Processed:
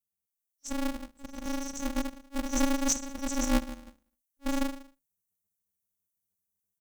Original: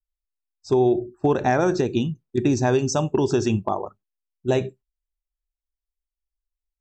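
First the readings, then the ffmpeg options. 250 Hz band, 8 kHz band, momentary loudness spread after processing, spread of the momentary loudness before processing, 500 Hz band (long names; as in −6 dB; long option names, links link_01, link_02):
−8.0 dB, +2.0 dB, 15 LU, 8 LU, −18.0 dB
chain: -filter_complex "[0:a]highpass=frequency=73:width=0.5412,highpass=frequency=73:width=1.3066,highshelf=frequency=4900:gain=-5,aecho=1:1:63|126|189|252:0.158|0.0729|0.0335|0.0154,adynamicequalizer=threshold=0.0316:dfrequency=500:dqfactor=0.71:tfrequency=500:tqfactor=0.71:attack=5:release=100:ratio=0.375:range=2.5:mode=cutabove:tftype=bell,asplit=2[link_01][link_02];[link_02]acompressor=threshold=-32dB:ratio=6,volume=3dB[link_03];[link_01][link_03]amix=inputs=2:normalize=0,alimiter=limit=-10.5dB:level=0:latency=1:release=100,dynaudnorm=framelen=180:gausssize=5:maxgain=5dB,aexciter=amount=2.1:drive=3.5:freq=3800,afftfilt=real='re*(1-between(b*sr/4096,130,5700))':imag='im*(1-between(b*sr/4096,130,5700))':win_size=4096:overlap=0.75,asoftclip=type=hard:threshold=-14.5dB,aeval=exprs='val(0)*sgn(sin(2*PI*140*n/s))':channel_layout=same,volume=-4.5dB"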